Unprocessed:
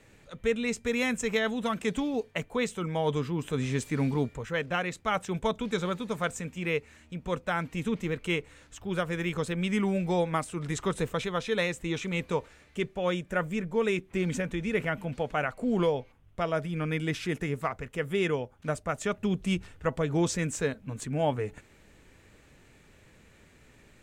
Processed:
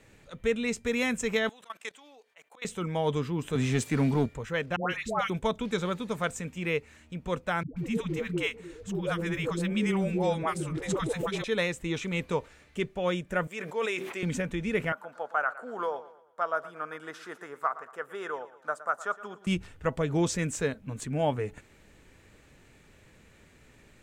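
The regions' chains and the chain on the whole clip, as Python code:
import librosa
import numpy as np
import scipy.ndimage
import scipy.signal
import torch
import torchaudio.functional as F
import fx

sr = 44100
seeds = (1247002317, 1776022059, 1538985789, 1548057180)

y = fx.chain(x, sr, fx.highpass(hz=800.0, slope=12),
    fx.auto_swell(attack_ms=112.0),
    fx.level_steps(step_db=18), at=(1.49, 2.65))
y = fx.chain(y, sr, fx.highpass(hz=84.0, slope=24),
    fx.leveller(passes=1), at=(3.55, 4.26))
y = fx.chain(y, sr, fx.hum_notches(base_hz=50, count=4),
    fx.dispersion(late='highs', ms=146.0, hz=920.0),
    fx.band_squash(depth_pct=40), at=(4.76, 5.3))
y = fx.chain(y, sr, fx.dispersion(late='highs', ms=135.0, hz=410.0),
    fx.echo_stepped(ms=299, hz=270.0, octaves=0.7, feedback_pct=70, wet_db=-11.5), at=(7.63, 11.44))
y = fx.chain(y, sr, fx.highpass(hz=520.0, slope=12),
    fx.sustainer(db_per_s=44.0), at=(13.47, 14.23))
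y = fx.chain(y, sr, fx.highpass(hz=700.0, slope=12),
    fx.high_shelf_res(hz=1800.0, db=-8.5, q=3.0),
    fx.echo_feedback(ms=115, feedback_pct=41, wet_db=-16), at=(14.92, 19.47))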